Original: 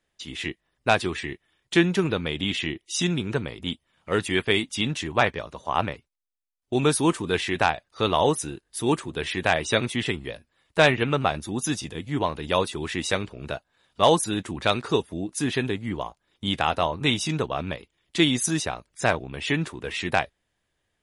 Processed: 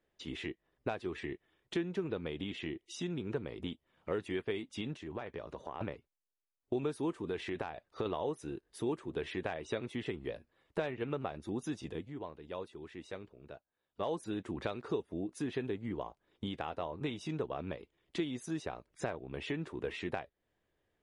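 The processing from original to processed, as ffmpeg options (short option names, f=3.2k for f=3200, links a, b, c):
-filter_complex "[0:a]asettb=1/sr,asplit=3[a][b][c];[a]atrim=end=4.964[d];[b]atrim=start=4.96:end=5.81,asetpts=PTS-STARTPTS,afade=t=in:d=0.004:c=qsin,afade=t=out:st=0.846:d=0.004:c=qsin,acompressor=threshold=-37dB:ratio=4:attack=3.2:release=140:knee=1:detection=peak[e];[c]atrim=start=5.806[f];[d][e]acrossfade=d=0.004:c1=hsin:c2=qsin[g];[g][f]acrossfade=d=0.004:c1=qsin:c2=hsin,asettb=1/sr,asplit=3[h][i][j];[h]atrim=end=7.274[k];[i]atrim=start=7.27:end=8.06,asetpts=PTS-STARTPTS,afade=t=in:d=0.004:c=qsin,afade=t=out:st=0.786:d=0.004:c=qsin,acompressor=threshold=-26dB:ratio=3:attack=3.2:release=140:knee=1:detection=peak[l];[j]atrim=start=8.056[m];[k][l]acrossfade=d=0.004:c1=hsin:c2=qsin[n];[n][m]acrossfade=d=0.004:c1=qsin:c2=hsin,asplit=3[o][p][q];[o]atrim=end=12.14,asetpts=PTS-STARTPTS,afade=t=out:st=11.88:d=0.26:silence=0.149624[r];[p]atrim=start=12.14:end=13.93,asetpts=PTS-STARTPTS,volume=-16.5dB[s];[q]atrim=start=13.93,asetpts=PTS-STARTPTS,afade=t=in:d=0.26:silence=0.149624[t];[r][s][t]concat=n=3:v=0:a=1,acompressor=threshold=-33dB:ratio=5,lowpass=f=2.3k:p=1,equalizer=f=410:w=1.1:g=6.5,volume=-4.5dB"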